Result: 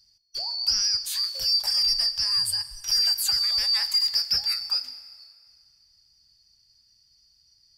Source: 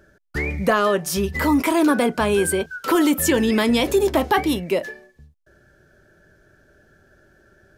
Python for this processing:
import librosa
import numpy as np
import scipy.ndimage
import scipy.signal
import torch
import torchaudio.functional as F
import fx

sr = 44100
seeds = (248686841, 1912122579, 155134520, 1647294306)

y = fx.band_shuffle(x, sr, order='2341')
y = fx.tone_stack(y, sr, knobs='10-0-10')
y = fx.rev_schroeder(y, sr, rt60_s=2.2, comb_ms=30, drr_db=13.5)
y = F.gain(torch.from_numpy(y), -4.5).numpy()